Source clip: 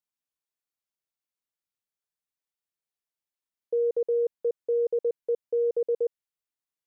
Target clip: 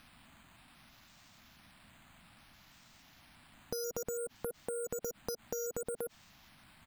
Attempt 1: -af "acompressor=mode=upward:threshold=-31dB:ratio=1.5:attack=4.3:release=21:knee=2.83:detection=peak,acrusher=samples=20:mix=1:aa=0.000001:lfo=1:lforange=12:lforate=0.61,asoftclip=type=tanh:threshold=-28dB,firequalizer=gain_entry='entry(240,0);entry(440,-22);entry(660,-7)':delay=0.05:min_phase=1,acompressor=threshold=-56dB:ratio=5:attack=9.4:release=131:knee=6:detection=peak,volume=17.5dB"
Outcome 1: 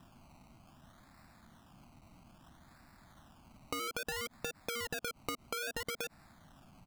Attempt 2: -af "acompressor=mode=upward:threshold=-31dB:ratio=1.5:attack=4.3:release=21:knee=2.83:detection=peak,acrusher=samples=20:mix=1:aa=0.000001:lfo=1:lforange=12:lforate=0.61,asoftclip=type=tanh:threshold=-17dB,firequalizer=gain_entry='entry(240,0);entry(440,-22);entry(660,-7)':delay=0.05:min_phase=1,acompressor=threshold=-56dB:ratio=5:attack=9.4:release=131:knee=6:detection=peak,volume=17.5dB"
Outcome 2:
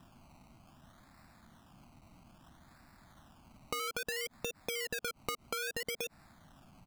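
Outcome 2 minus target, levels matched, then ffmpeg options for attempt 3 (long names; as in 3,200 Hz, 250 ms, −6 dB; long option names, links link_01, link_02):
sample-and-hold swept by an LFO: distortion +13 dB
-af "acompressor=mode=upward:threshold=-31dB:ratio=1.5:attack=4.3:release=21:knee=2.83:detection=peak,acrusher=samples=6:mix=1:aa=0.000001:lfo=1:lforange=3.6:lforate=0.61,asoftclip=type=tanh:threshold=-17dB,firequalizer=gain_entry='entry(240,0);entry(440,-22);entry(660,-7)':delay=0.05:min_phase=1,acompressor=threshold=-56dB:ratio=5:attack=9.4:release=131:knee=6:detection=peak,volume=17.5dB"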